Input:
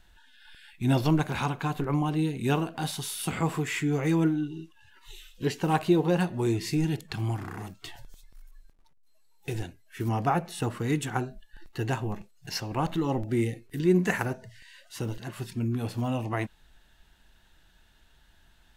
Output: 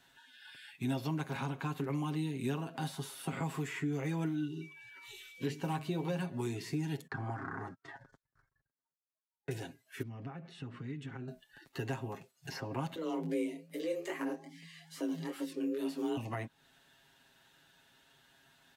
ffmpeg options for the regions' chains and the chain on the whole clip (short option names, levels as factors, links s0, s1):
-filter_complex "[0:a]asettb=1/sr,asplit=3[s0][s1][s2];[s0]atrim=end=4.614[s3];[s1]atrim=start=4.61:end=6.29,asetpts=PTS-STARTPTS,afade=t=in:d=0.004:c=qsin,afade=t=out:st=1.676:d=0.004:c=qsin,aeval=exprs='val(0)+0.00178*sin(2*PI*2300*n/s)':c=same,bandreject=f=50:t=h:w=6,bandreject=f=100:t=h:w=6,bandreject=f=150:t=h:w=6,bandreject=f=200:t=h:w=6,bandreject=f=250:t=h:w=6,bandreject=f=300:t=h:w=6,bandreject=f=350:t=h:w=6,bandreject=f=400:t=h:w=6,bandreject=f=450:t=h:w=6[s4];[s2]atrim=start=6.286[s5];[s3][s4]acrossfade=d=0.004:c1=hsin:c2=qsin[s6];[s6][s5]acrossfade=d=0.004:c1=qsin:c2=hsin,asettb=1/sr,asplit=3[s7][s8][s9];[s7]atrim=end=7.074[s10];[s8]atrim=start=7.07:end=9.51,asetpts=PTS-STARTPTS,afade=t=in:d=0.004:c=qsin,afade=t=out:st=2.436:d=0.004:c=qsin,highshelf=f=2100:t=q:w=3:g=-9.5,agate=range=0.0398:threshold=0.00501:ratio=16:release=100:detection=peak,lowpass=5400[s11];[s9]atrim=start=9.506[s12];[s10][s11]acrossfade=d=0.004:c1=hsin:c2=qsin[s13];[s13][s12]acrossfade=d=0.004:c1=qsin:c2=hsin,asettb=1/sr,asplit=3[s14][s15][s16];[s14]atrim=end=10.024[s17];[s15]atrim=start=10.02:end=11.28,asetpts=PTS-STARTPTS,afade=t=in:d=0.004:c=qsin,afade=t=out:st=1.256:d=0.004:c=qsin,acompressor=threshold=0.0224:ratio=8:attack=3.2:release=140:knee=1:detection=peak,lowpass=2200,equalizer=f=810:w=0.6:g=-14[s18];[s16]atrim=start=11.276[s19];[s17][s18]acrossfade=d=0.004:c1=hsin:c2=qsin[s20];[s20][s19]acrossfade=d=0.004:c1=qsin:c2=hsin,asettb=1/sr,asplit=3[s21][s22][s23];[s21]atrim=end=12.954[s24];[s22]atrim=start=12.95:end=16.17,asetpts=PTS-STARTPTS,afade=t=in:d=0.004:c=qsin,afade=t=out:st=3.216:d=0.004:c=qsin,flanger=delay=16.5:depth=7.8:speed=2.4,afreqshift=160[s25];[s23]atrim=start=16.166[s26];[s24][s25]acrossfade=d=0.004:c1=hsin:c2=qsin[s27];[s27][s26]acrossfade=d=0.004:c1=qsin:c2=hsin,aecho=1:1:7.4:0.65,acrossover=split=280|1700[s28][s29][s30];[s28]acompressor=threshold=0.0251:ratio=4[s31];[s29]acompressor=threshold=0.0112:ratio=4[s32];[s30]acompressor=threshold=0.00398:ratio=4[s33];[s31][s32][s33]amix=inputs=3:normalize=0,highpass=160,volume=0.841"